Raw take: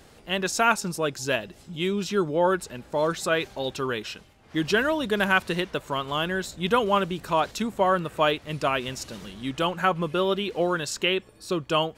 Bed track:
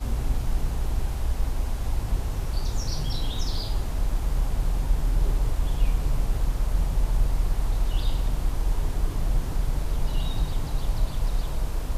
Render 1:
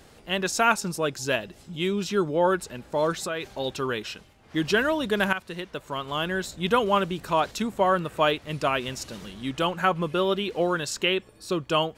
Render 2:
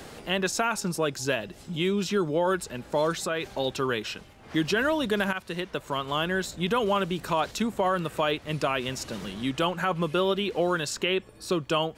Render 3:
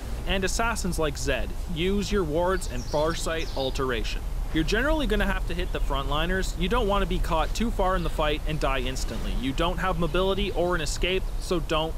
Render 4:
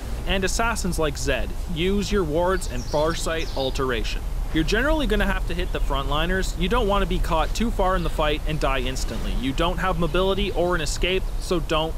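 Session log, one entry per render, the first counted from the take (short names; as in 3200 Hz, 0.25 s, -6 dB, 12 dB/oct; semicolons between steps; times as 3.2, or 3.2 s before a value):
3.17–3.57 compressor 3:1, threshold -28 dBFS; 5.33–6.38 fade in, from -13 dB
limiter -15.5 dBFS, peak gain reduction 7.5 dB; three-band squash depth 40%
add bed track -6 dB
gain +3 dB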